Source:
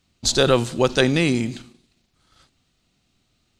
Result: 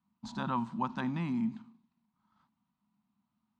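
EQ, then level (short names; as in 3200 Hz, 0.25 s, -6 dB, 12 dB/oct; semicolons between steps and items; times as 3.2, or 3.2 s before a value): double band-pass 450 Hz, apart 2.2 oct; 0.0 dB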